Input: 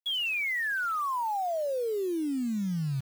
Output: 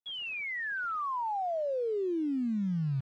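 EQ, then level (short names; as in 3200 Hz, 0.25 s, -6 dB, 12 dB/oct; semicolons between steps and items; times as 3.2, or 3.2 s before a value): tape spacing loss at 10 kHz 28 dB; 0.0 dB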